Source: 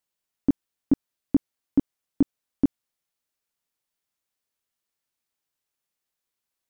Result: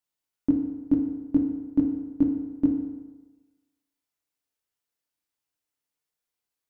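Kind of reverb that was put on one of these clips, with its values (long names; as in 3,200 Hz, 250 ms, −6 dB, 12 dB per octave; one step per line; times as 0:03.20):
feedback delay network reverb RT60 1.2 s, low-frequency decay 0.9×, high-frequency decay 0.7×, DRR 1 dB
level −5 dB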